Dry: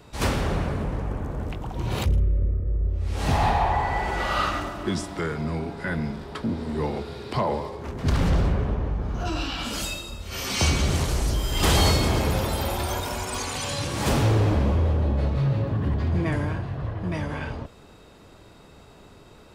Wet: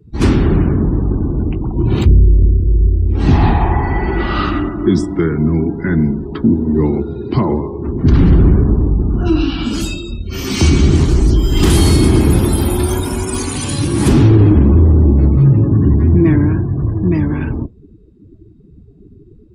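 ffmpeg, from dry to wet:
-filter_complex "[0:a]asettb=1/sr,asplit=3[a][b][c];[a]atrim=end=11.704[d];[b]atrim=start=11.7:end=14.08,asetpts=PTS-STARTPTS,afade=t=in:d=0.004:c=qsin,afade=t=out:st=2.376:d=0.004:c=qsin,equalizer=f=10k:w=2.9:g=13[e];[c]atrim=start=14.076[f];[d][e]acrossfade=d=0.004:c1=hsin:c2=qsin[g];[g][f]acrossfade=d=0.004:c1=qsin:c2=hsin,afftdn=nr=30:nf=-39,lowshelf=f=430:t=q:w=3:g=7.5,alimiter=level_in=6.5dB:limit=-1dB:release=50:level=0:latency=1,volume=-1dB"

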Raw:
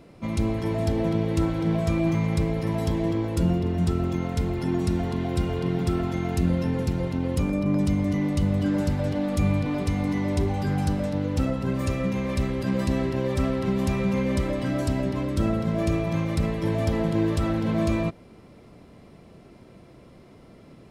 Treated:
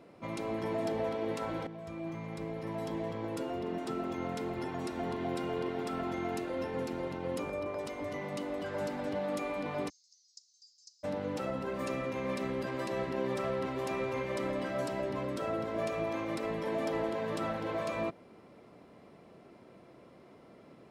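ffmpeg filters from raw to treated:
-filter_complex "[0:a]asplit=3[a][b][c];[a]afade=t=out:st=9.88:d=0.02[d];[b]asuperpass=centerf=5800:order=8:qfactor=2.2,afade=t=in:st=9.88:d=0.02,afade=t=out:st=11.03:d=0.02[e];[c]afade=t=in:st=11.03:d=0.02[f];[d][e][f]amix=inputs=3:normalize=0,asplit=2[g][h];[g]atrim=end=1.67,asetpts=PTS-STARTPTS,afade=t=out:st=1.666:d=0.004:c=hsin:silence=0.16788[i];[h]atrim=start=1.67,asetpts=PTS-STARTPTS,afade=t=in:d=2.08:silence=0.16788[j];[i][j]concat=n=2:v=0:a=1,afftfilt=real='re*lt(hypot(re,im),0.355)':imag='im*lt(hypot(re,im),0.355)':win_size=1024:overlap=0.75,highpass=f=490:p=1,highshelf=f=2.3k:g=-10"

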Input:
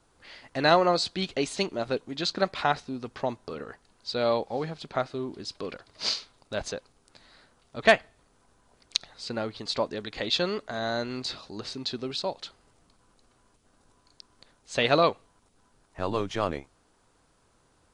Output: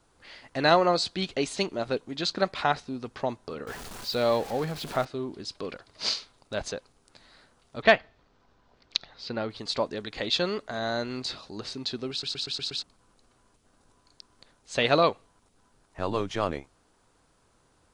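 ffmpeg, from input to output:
-filter_complex "[0:a]asettb=1/sr,asplit=3[a][b][c];[a]atrim=end=3.674[d];[b]atrim=start=3.67:end=5.05,asetpts=PTS-STARTPTS,afade=t=in:d=0.004:c=qsin,afade=t=out:st=1.376:d=0.004:c=qsin,aeval=exprs='val(0)+0.5*0.0168*sgn(val(0))':c=same[e];[c]atrim=start=5.046[f];[d][e]acrossfade=d=0.004:c1=hsin:c2=qsin[g];[g][f]acrossfade=d=0.004:c1=qsin:c2=hsin,asettb=1/sr,asplit=3[h][i][j];[h]atrim=end=7.824[k];[i]atrim=start=7.82:end=9.5,asetpts=PTS-STARTPTS,afade=t=in:d=0.004:c=qsin,afade=t=out:st=1.676:d=0.004:c=qsin,lowpass=f=5.2k:w=0.5412,lowpass=f=5.2k:w=1.3066[l];[j]atrim=start=9.496[m];[k][l]acrossfade=d=0.004:c1=hsin:c2=qsin[n];[n][m]acrossfade=d=0.004:c1=qsin:c2=hsin,asplit=7[o][p][q][r][s][t][u];[o]atrim=end=12.232[v];[p]atrim=start=12.108:end=12.232[w];[q]atrim=start=12.108:end=12.232[x];[r]atrim=start=12.108:end=12.232[y];[s]atrim=start=12.108:end=12.232[z];[t]atrim=start=12.108:end=12.232[aa];[u]atrim=start=12.828[ab];[v][w]acrossfade=d=0.004:c1=hsin:c2=hsin[ac];[ac][x]acrossfade=d=0.004:c1=hsin:c2=hsin[ad];[ad][y]acrossfade=d=0.004:c1=hsin:c2=hsin[ae];[ae][z]acrossfade=d=0.004:c1=hsin:c2=hsin[af];[af][aa]acrossfade=d=0.004:c1=hsin:c2=hsin[ag];[ag][ab]acrossfade=d=0.004:c1=hsin:c2=hsin"

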